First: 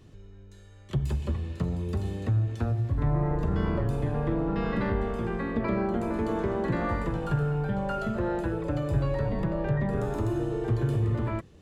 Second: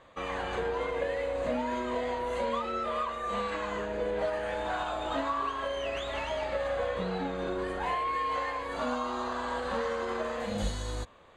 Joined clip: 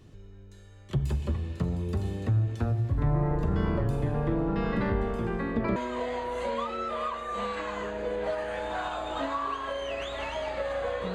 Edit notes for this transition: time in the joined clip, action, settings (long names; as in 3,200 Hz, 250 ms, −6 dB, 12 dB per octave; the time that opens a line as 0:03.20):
first
0:05.76: continue with second from 0:01.71